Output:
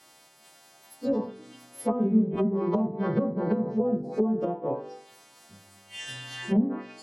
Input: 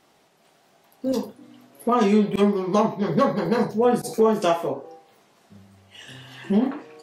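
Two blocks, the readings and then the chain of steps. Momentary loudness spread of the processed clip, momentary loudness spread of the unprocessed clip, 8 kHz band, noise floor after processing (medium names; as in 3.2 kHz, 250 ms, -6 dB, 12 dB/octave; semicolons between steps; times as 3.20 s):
15 LU, 14 LU, no reading, -57 dBFS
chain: partials quantised in pitch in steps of 2 st; de-hum 48.83 Hz, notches 12; low-pass that closes with the level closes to 330 Hz, closed at -18.5 dBFS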